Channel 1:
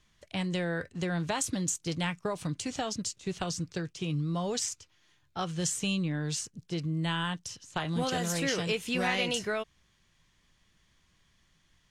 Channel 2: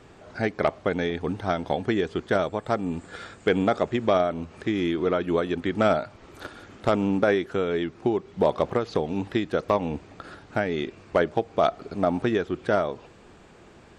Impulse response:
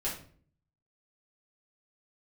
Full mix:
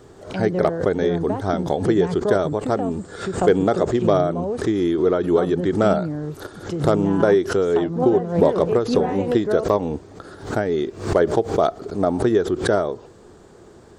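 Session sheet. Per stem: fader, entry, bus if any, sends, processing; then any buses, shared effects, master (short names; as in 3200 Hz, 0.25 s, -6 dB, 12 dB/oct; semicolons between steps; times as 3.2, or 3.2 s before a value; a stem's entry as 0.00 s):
-0.5 dB, 0.00 s, no send, treble ducked by the level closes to 960 Hz, closed at -31.5 dBFS; bell 440 Hz +9.5 dB 2.5 oct
+1.5 dB, 0.00 s, no send, fifteen-band EQ 100 Hz +4 dB, 400 Hz +7 dB, 2500 Hz -11 dB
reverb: off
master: high shelf 8300 Hz +10.5 dB; backwards sustainer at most 120 dB/s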